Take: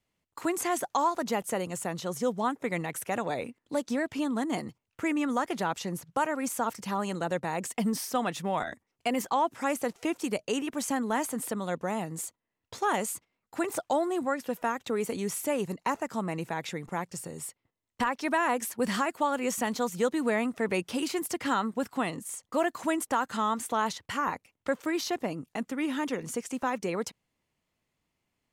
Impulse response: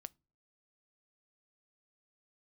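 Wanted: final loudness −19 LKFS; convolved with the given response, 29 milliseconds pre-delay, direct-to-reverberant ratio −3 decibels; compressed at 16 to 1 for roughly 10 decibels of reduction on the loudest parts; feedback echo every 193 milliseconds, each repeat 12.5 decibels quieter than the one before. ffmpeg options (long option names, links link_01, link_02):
-filter_complex "[0:a]acompressor=threshold=-32dB:ratio=16,aecho=1:1:193|386|579:0.237|0.0569|0.0137,asplit=2[link_01][link_02];[1:a]atrim=start_sample=2205,adelay=29[link_03];[link_02][link_03]afir=irnorm=-1:irlink=0,volume=9dB[link_04];[link_01][link_04]amix=inputs=2:normalize=0,volume=13.5dB"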